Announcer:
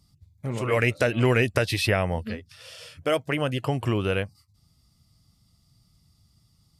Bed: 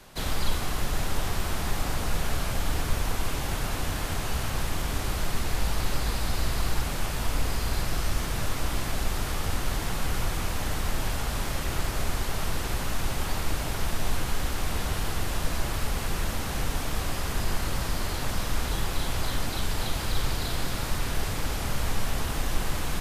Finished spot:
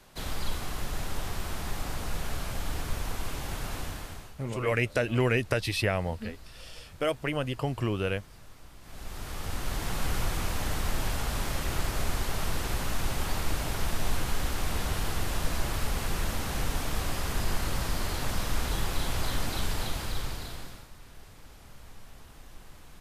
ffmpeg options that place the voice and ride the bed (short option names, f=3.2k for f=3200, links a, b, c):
-filter_complex "[0:a]adelay=3950,volume=-4.5dB[a];[1:a]volume=15.5dB,afade=t=out:st=3.78:d=0.57:silence=0.141254,afade=t=in:st=8.81:d=1.22:silence=0.0891251,afade=t=out:st=19.64:d=1.24:silence=0.1[b];[a][b]amix=inputs=2:normalize=0"